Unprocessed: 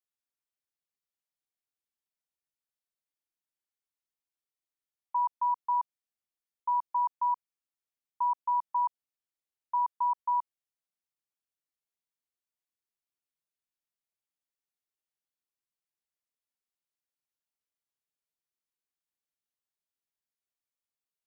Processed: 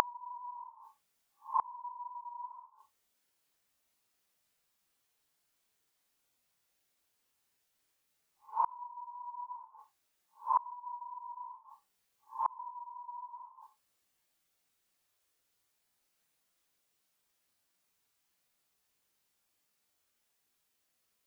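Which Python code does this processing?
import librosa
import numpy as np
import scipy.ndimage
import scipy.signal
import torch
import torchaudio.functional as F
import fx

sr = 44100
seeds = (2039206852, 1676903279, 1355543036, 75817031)

y = fx.spec_quant(x, sr, step_db=30)
y = fx.paulstretch(y, sr, seeds[0], factor=7.1, window_s=0.05, from_s=8.51)
y = fx.gate_flip(y, sr, shuts_db=-32.0, range_db=-33)
y = y * librosa.db_to_amplitude(15.0)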